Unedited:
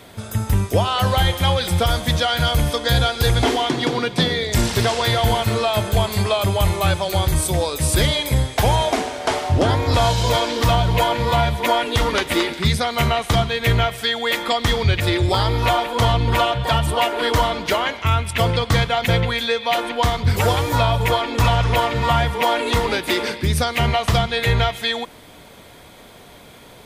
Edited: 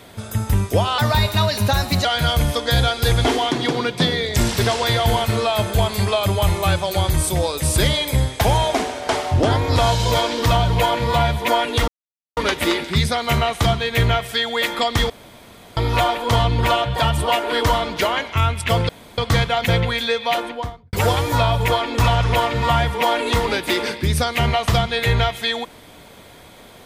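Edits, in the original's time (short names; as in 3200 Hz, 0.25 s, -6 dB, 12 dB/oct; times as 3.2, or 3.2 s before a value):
0.98–2.23 speed 117%
12.06 insert silence 0.49 s
14.79–15.46 room tone
18.58 insert room tone 0.29 s
19.66–20.33 studio fade out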